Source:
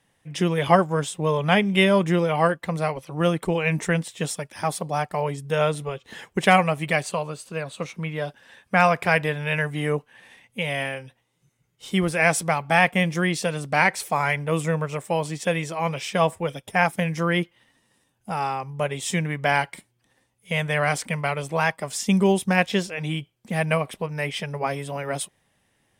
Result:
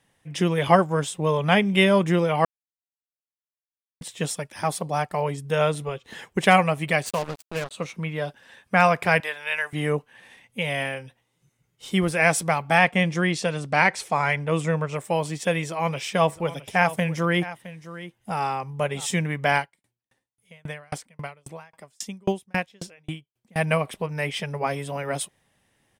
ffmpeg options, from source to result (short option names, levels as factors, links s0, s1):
-filter_complex "[0:a]asettb=1/sr,asplit=3[s0][s1][s2];[s0]atrim=end=7.064[s3];[s1]atrim=start=7.06:end=7.71,asetpts=PTS-STARTPTS,afade=t=in:d=0.004:c=qsin,afade=t=out:st=0.646:d=0.004:c=qsin,acrusher=bits=4:mix=0:aa=0.5[s4];[s2]atrim=start=7.706[s5];[s3][s4]acrossfade=d=0.004:c1=hsin:c2=qsin[s6];[s6][s5]acrossfade=d=0.004:c1=qsin:c2=hsin,asettb=1/sr,asplit=3[s7][s8][s9];[s7]atrim=end=9.204[s10];[s8]atrim=start=9.2:end=9.73,asetpts=PTS-STARTPTS,afade=t=in:d=0.004:c=qsin,afade=t=out:st=0.526:d=0.004:c=qsin,highpass=810[s11];[s9]atrim=start=9.726[s12];[s10][s11]acrossfade=d=0.004:c1=hsin:c2=qsin[s13];[s13][s12]acrossfade=d=0.004:c1=qsin:c2=hsin,asettb=1/sr,asplit=3[s14][s15][s16];[s14]atrim=end=12.784[s17];[s15]atrim=start=12.78:end=14.95,asetpts=PTS-STARTPTS,afade=t=in:d=0.004:c=qsin,afade=t=out:st=2.166:d=0.004:c=qsin,lowpass=8000[s18];[s16]atrim=start=14.946[s19];[s17][s18]acrossfade=d=0.004:c1=hsin:c2=qsin[s20];[s20][s19]acrossfade=d=0.004:c1=qsin:c2=hsin,asplit=3[s21][s22][s23];[s21]afade=t=out:st=16.28:d=0.02[s24];[s22]aecho=1:1:665:0.168,afade=t=in:st=16.28:d=0.02,afade=t=out:st=19.05:d=0.02[s25];[s23]afade=t=in:st=19.05:d=0.02[s26];[s24][s25][s26]amix=inputs=3:normalize=0,asettb=1/sr,asplit=3[s27][s28][s29];[s27]atrim=end=19.574[s30];[s28]atrim=start=19.57:end=23.56,asetpts=PTS-STARTPTS,afade=t=in:d=0.004:c=qsin,afade=t=out:st=3.986:d=0.004:c=qsin,aeval=exprs='val(0)*pow(10,-40*if(lt(mod(3.7*n/s,1),2*abs(3.7)/1000),1-mod(3.7*n/s,1)/(2*abs(3.7)/1000),(mod(3.7*n/s,1)-2*abs(3.7)/1000)/(1-2*abs(3.7)/1000))/20)':c=same[s31];[s29]atrim=start=23.556[s32];[s30][s31]acrossfade=d=0.004:c1=hsin:c2=qsin[s33];[s33][s32]acrossfade=d=0.004:c1=qsin:c2=hsin,asplit=3[s34][s35][s36];[s34]atrim=end=2.45,asetpts=PTS-STARTPTS,afade=t=out:st=2.446:d=0.004:c=hsin[s37];[s35]atrim=start=2.45:end=4.01,asetpts=PTS-STARTPTS,volume=0[s38];[s36]atrim=start=4.01,asetpts=PTS-STARTPTS,afade=t=in:d=0.004:c=hsin[s39];[s37][s38][s39]concat=n=3:v=0:a=1"